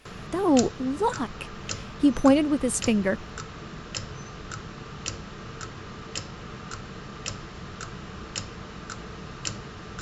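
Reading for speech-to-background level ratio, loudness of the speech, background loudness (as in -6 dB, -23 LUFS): 13.0 dB, -24.0 LUFS, -37.0 LUFS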